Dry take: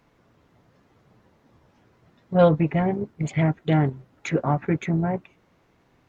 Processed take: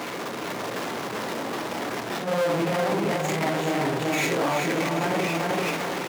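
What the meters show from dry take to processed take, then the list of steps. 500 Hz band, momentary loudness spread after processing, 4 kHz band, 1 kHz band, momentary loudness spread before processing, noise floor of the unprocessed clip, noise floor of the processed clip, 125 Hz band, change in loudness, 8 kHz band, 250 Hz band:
+0.5 dB, 7 LU, +12.5 dB, +4.0 dB, 9 LU, -63 dBFS, -33 dBFS, -8.0 dB, -3.0 dB, n/a, -2.5 dB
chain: phase scrambler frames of 0.2 s; power-law curve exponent 0.35; on a send: feedback echo 0.387 s, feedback 37%, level -4.5 dB; on the sum: transient shaper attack -12 dB, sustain +7 dB; HPF 280 Hz 12 dB/oct; limiter -11 dBFS, peak gain reduction 11 dB; gain -5 dB

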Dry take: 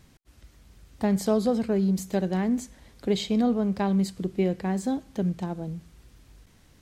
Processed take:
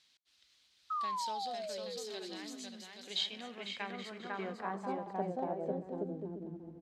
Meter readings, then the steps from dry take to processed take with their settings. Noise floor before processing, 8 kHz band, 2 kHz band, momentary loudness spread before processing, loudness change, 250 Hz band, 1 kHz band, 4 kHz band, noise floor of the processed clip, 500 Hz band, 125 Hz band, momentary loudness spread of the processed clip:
-58 dBFS, -9.0 dB, -4.5 dB, 9 LU, -13.0 dB, -19.0 dB, -2.5 dB, 0.0 dB, -70 dBFS, -12.0 dB, -18.5 dB, 9 LU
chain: bouncing-ball echo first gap 0.5 s, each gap 0.65×, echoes 5; painted sound fall, 0.9–2.82, 210–1300 Hz -19 dBFS; band-pass sweep 3900 Hz -> 300 Hz, 3.04–6.52; gain +1 dB

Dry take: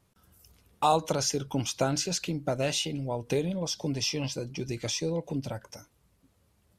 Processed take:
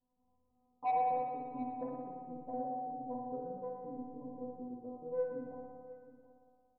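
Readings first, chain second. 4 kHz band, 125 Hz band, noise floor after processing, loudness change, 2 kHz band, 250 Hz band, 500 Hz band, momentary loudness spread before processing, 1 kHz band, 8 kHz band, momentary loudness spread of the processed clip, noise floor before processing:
under -40 dB, -24.5 dB, -76 dBFS, -10.0 dB, -19.0 dB, -11.0 dB, -9.0 dB, 9 LU, -3.5 dB, under -40 dB, 13 LU, -69 dBFS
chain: steep low-pass 1100 Hz 96 dB/oct; resonator 250 Hz, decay 1 s, mix 100%; soft clip -36.5 dBFS, distortion -18 dB; echo 0.721 s -16.5 dB; spring tank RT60 1.8 s, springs 57 ms, chirp 55 ms, DRR 0 dB; gain +9.5 dB

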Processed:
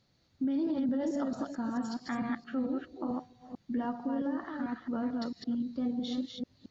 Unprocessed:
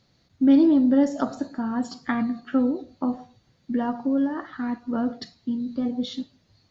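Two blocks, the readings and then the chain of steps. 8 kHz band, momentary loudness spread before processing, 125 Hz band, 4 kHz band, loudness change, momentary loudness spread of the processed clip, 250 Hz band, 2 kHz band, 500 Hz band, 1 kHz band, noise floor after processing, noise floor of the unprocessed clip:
n/a, 13 LU, -5.5 dB, -6.0 dB, -10.0 dB, 6 LU, -10.0 dB, -7.5 dB, -9.0 dB, -7.0 dB, -71 dBFS, -65 dBFS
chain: reverse delay 0.222 s, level -3 dB; limiter -18 dBFS, peak gain reduction 11 dB; gain -7 dB

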